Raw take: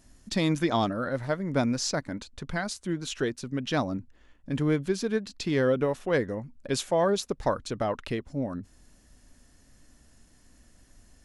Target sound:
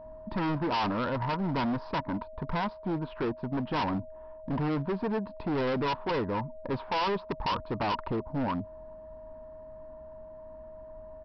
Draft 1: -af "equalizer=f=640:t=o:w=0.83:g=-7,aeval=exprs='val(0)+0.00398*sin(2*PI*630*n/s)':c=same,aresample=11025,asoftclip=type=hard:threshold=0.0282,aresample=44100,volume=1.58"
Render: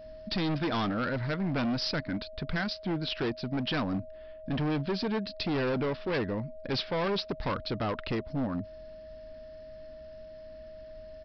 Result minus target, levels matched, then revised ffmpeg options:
1 kHz band -5.5 dB
-af "lowpass=f=950:t=q:w=11,equalizer=f=640:t=o:w=0.83:g=-7,aeval=exprs='val(0)+0.00398*sin(2*PI*630*n/s)':c=same,aresample=11025,asoftclip=type=hard:threshold=0.0282,aresample=44100,volume=1.58"

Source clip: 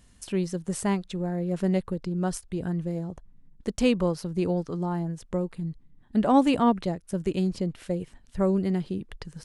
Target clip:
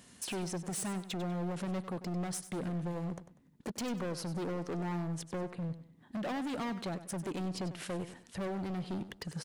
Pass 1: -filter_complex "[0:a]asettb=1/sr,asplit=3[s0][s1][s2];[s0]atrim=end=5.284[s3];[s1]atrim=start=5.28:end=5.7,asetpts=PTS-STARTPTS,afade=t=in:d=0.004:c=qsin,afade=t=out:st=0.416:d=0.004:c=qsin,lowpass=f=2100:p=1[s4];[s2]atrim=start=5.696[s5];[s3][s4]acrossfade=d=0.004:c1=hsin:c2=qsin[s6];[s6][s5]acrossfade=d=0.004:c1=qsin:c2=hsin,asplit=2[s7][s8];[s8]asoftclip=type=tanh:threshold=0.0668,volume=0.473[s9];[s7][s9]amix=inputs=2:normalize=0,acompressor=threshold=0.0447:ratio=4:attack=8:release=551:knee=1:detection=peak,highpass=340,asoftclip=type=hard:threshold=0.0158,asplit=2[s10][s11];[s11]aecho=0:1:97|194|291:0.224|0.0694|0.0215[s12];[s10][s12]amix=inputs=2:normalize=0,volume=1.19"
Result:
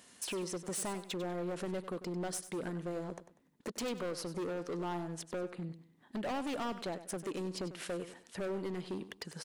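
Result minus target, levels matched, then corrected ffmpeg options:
125 Hz band -5.0 dB
-filter_complex "[0:a]asettb=1/sr,asplit=3[s0][s1][s2];[s0]atrim=end=5.284[s3];[s1]atrim=start=5.28:end=5.7,asetpts=PTS-STARTPTS,afade=t=in:d=0.004:c=qsin,afade=t=out:st=0.416:d=0.004:c=qsin,lowpass=f=2100:p=1[s4];[s2]atrim=start=5.696[s5];[s3][s4]acrossfade=d=0.004:c1=hsin:c2=qsin[s6];[s6][s5]acrossfade=d=0.004:c1=qsin:c2=hsin,asplit=2[s7][s8];[s8]asoftclip=type=tanh:threshold=0.0668,volume=0.473[s9];[s7][s9]amix=inputs=2:normalize=0,acompressor=threshold=0.0447:ratio=4:attack=8:release=551:knee=1:detection=peak,highpass=170,asoftclip=type=hard:threshold=0.0158,asplit=2[s10][s11];[s11]aecho=0:1:97|194|291:0.224|0.0694|0.0215[s12];[s10][s12]amix=inputs=2:normalize=0,volume=1.19"

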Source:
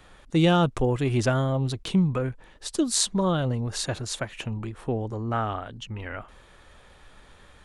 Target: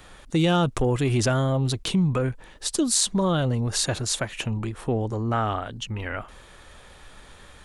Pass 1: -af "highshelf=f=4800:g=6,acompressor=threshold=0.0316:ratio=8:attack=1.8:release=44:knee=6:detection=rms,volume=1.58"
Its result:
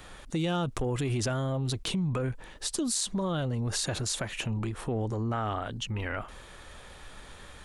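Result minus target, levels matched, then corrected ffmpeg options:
compression: peak gain reduction +8.5 dB
-af "highshelf=f=4800:g=6,acompressor=threshold=0.1:ratio=8:attack=1.8:release=44:knee=6:detection=rms,volume=1.58"

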